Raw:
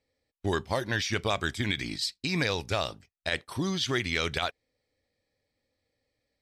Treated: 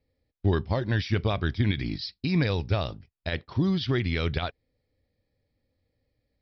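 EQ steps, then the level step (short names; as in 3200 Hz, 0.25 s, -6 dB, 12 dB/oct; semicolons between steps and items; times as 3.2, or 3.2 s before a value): steep low-pass 5400 Hz 96 dB/oct; low shelf 180 Hz +7 dB; low shelf 470 Hz +8.5 dB; -4.0 dB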